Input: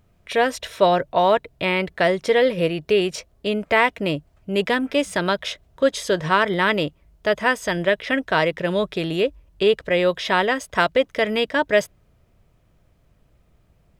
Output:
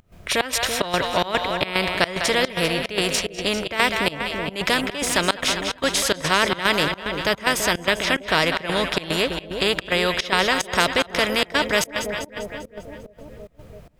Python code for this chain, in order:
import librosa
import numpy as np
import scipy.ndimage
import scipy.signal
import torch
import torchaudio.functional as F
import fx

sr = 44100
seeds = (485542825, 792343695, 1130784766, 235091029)

y = fx.echo_split(x, sr, split_hz=640.0, low_ms=333, high_ms=198, feedback_pct=52, wet_db=-11.5)
y = fx.volume_shaper(y, sr, bpm=147, per_beat=1, depth_db=-23, release_ms=118.0, shape='slow start')
y = fx.spectral_comp(y, sr, ratio=2.0)
y = y * 10.0 ** (1.5 / 20.0)